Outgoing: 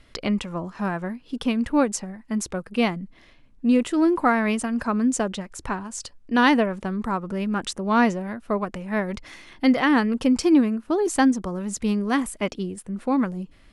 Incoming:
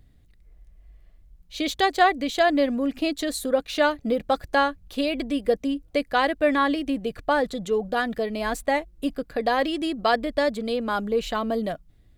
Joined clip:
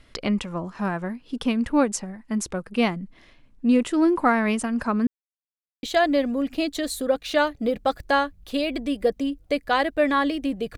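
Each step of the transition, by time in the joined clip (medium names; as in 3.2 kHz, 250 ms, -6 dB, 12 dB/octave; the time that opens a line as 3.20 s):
outgoing
5.07–5.83 s: mute
5.83 s: go over to incoming from 2.27 s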